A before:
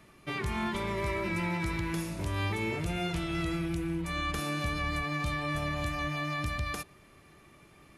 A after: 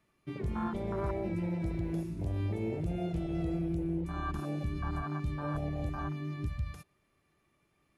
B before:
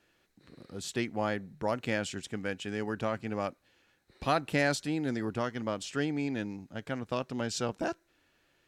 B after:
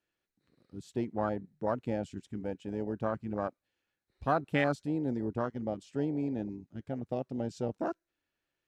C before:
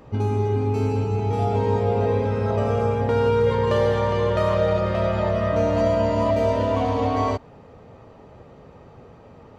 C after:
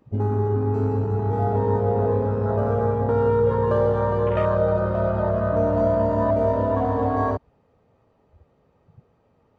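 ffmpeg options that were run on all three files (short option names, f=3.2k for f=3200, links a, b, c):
-af "afwtdn=0.0355"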